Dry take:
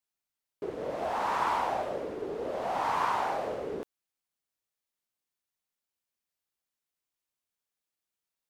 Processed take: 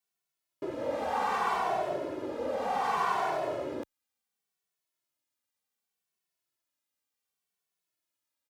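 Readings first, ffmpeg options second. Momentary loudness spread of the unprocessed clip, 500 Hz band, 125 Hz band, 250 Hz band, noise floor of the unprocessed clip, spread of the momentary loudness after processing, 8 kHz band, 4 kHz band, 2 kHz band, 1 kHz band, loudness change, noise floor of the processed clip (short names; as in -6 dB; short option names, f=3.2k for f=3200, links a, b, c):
11 LU, +0.5 dB, -1.0 dB, +2.0 dB, under -85 dBFS, 10 LU, +0.5 dB, +0.5 dB, +1.0 dB, 0.0 dB, 0.0 dB, under -85 dBFS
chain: -filter_complex "[0:a]highpass=f=90:p=1,asplit=2[a][b];[b]alimiter=level_in=1.5dB:limit=-24dB:level=0:latency=1,volume=-1.5dB,volume=-2.5dB[c];[a][c]amix=inputs=2:normalize=0,asplit=2[d][e];[e]adelay=2.2,afreqshift=-0.67[f];[d][f]amix=inputs=2:normalize=1"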